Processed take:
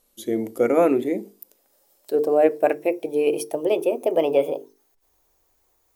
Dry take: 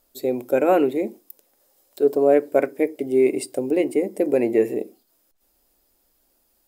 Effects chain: speed glide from 85% -> 139%; notches 50/100/150/200/250/300/350/400/450 Hz

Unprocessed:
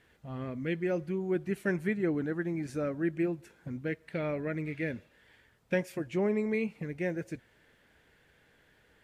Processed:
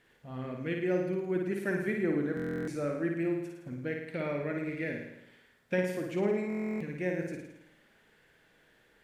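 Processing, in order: bell 69 Hz -12.5 dB 0.93 oct; on a send: flutter echo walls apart 9.4 m, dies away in 0.83 s; on the sum: stuck buffer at 2.35/6.48, samples 1024, times 13; gain -1.5 dB

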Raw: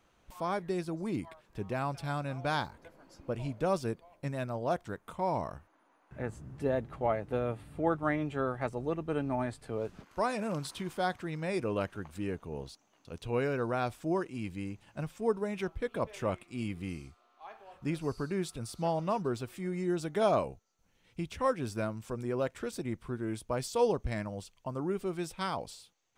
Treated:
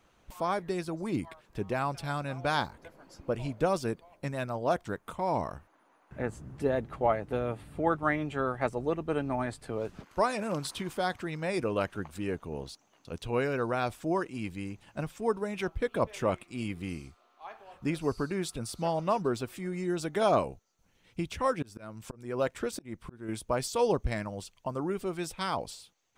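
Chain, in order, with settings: 21.51–23.29 auto swell 0.303 s; harmonic-percussive split percussive +5 dB

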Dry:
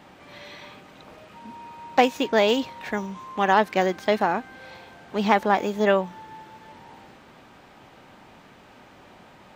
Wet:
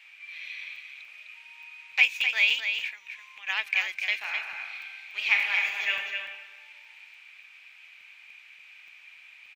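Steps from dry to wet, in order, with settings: 2.6–3.47 compressor 8:1, threshold -33 dBFS, peak gain reduction 16 dB; resonant high-pass 2400 Hz, resonance Q 10; 4.18–5.94 reverb throw, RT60 1.3 s, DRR 1 dB; echo 0.257 s -7 dB; crackling interface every 0.29 s, samples 128, zero, from 0.76; gain -6 dB

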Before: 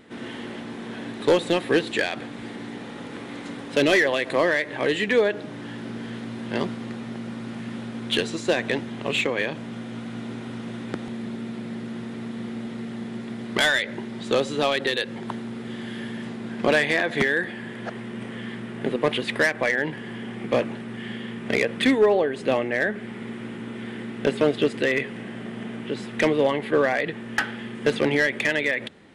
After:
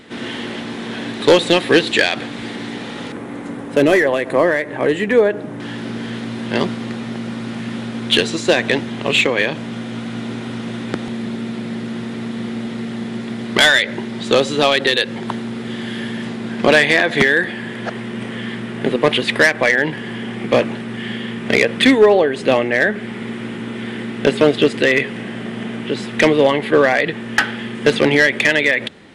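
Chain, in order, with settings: bell 4100 Hz +5.5 dB 1.9 oct, from 3.12 s -11 dB, from 5.6 s +3 dB; gain +7.5 dB

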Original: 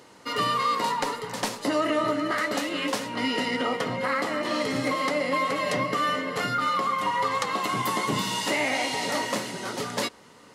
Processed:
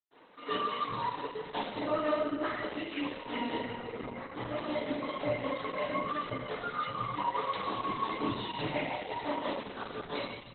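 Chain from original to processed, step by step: 1.84–2.4 HPF 65 Hz 12 dB/oct; reverb removal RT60 0.73 s; 8.63–9.24 LPF 3400 Hz 6 dB/oct; dynamic EQ 1600 Hz, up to -5 dB, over -40 dBFS, Q 1.1; 3.48–4.24 negative-ratio compressor -34 dBFS, ratio -0.5; chopper 5.7 Hz, depth 65%, duty 50%; bands offset in time highs, lows 0.39 s, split 180 Hz; reverb RT60 1.1 s, pre-delay 0.108 s; Opus 8 kbps 48000 Hz

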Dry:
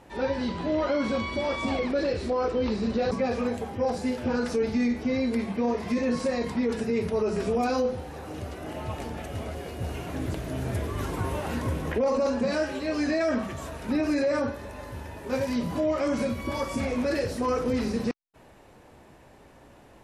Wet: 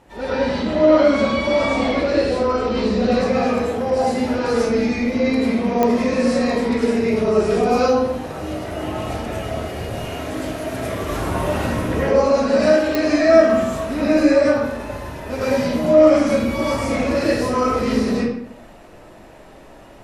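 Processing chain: 9.85–11.02 low shelf 230 Hz -9 dB; reverb RT60 0.80 s, pre-delay 60 ms, DRR -9.5 dB; pops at 5.83/12.95, -6 dBFS

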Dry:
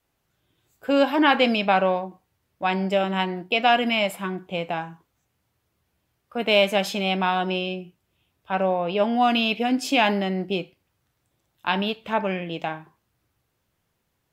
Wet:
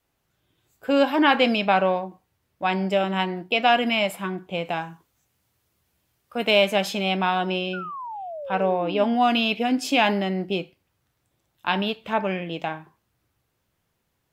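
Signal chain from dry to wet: 4.65–6.51 high shelf 3600 Hz +7 dB; 7.73–9.14 painted sound fall 220–1500 Hz -34 dBFS

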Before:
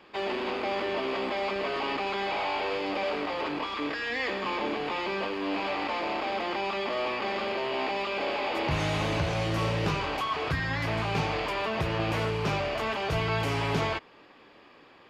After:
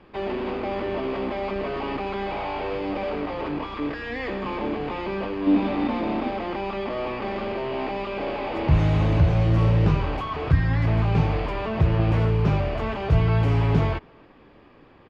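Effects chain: RIAA curve playback; 5.46–6.29 small resonant body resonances 240/3600 Hz, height 16 dB -> 12 dB; speakerphone echo 0.28 s, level -29 dB

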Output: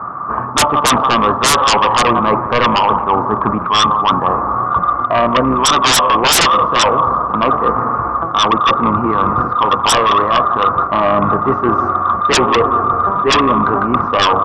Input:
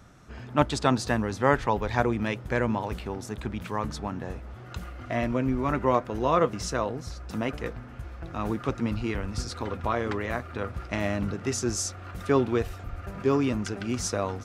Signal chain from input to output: octaver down 2 oct, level -2 dB; ladder low-pass 1200 Hz, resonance 85%; bell 940 Hz +8.5 dB 1.5 oct; echo 0.175 s -17.5 dB; on a send at -15.5 dB: reverb RT60 2.5 s, pre-delay 7 ms; on the sum: dynamic EQ 520 Hz, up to +5 dB, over -39 dBFS, Q 2.2; HPF 130 Hz 12 dB/oct; sine folder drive 19 dB, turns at -5 dBFS; reverse; compressor 6:1, threshold -18 dBFS, peak gain reduction 10.5 dB; reverse; gain +7.5 dB

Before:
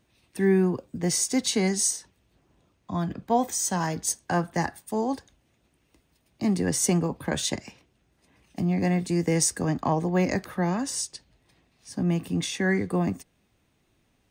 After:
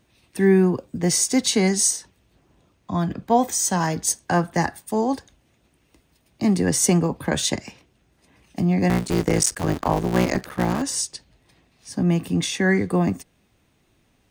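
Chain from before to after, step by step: 8.89–10.82 cycle switcher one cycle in 3, muted; gain +5 dB

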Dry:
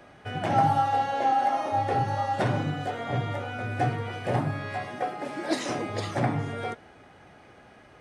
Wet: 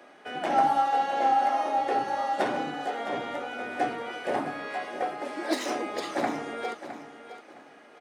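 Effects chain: tracing distortion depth 0.026 ms; HPF 250 Hz 24 dB/oct; feedback echo 0.662 s, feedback 26%, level -12 dB

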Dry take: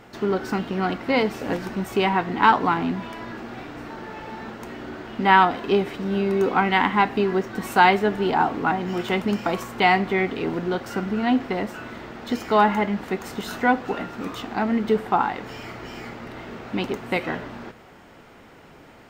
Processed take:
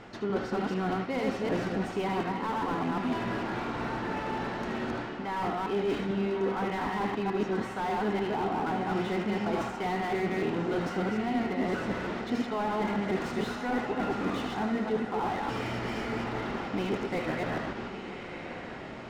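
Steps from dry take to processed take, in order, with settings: reverse delay 0.149 s, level -2 dB; LPF 6300 Hz 12 dB/oct; reverse; compressor 16:1, threshold -26 dBFS, peak gain reduction 19 dB; reverse; diffused feedback echo 1.165 s, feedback 41%, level -10.5 dB; on a send at -10 dB: reverb, pre-delay 75 ms; on the sum: slew limiter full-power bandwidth 34 Hz

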